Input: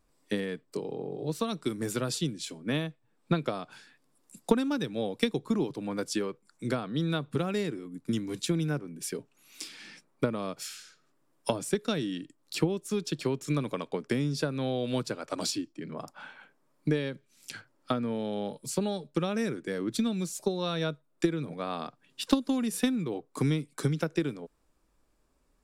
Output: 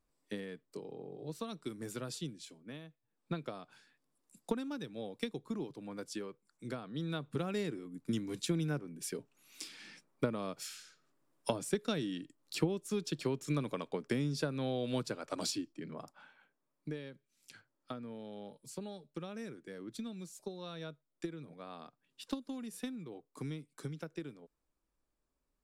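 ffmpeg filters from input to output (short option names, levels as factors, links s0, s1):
-af "volume=1.5,afade=t=out:st=2.28:d=0.5:silence=0.375837,afade=t=in:st=2.78:d=0.58:silence=0.398107,afade=t=in:st=6.79:d=0.93:silence=0.501187,afade=t=out:st=15.86:d=0.4:silence=0.354813"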